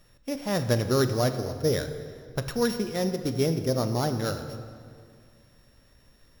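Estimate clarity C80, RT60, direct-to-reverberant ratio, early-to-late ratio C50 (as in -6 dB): 10.5 dB, 2.2 s, 7.5 dB, 9.5 dB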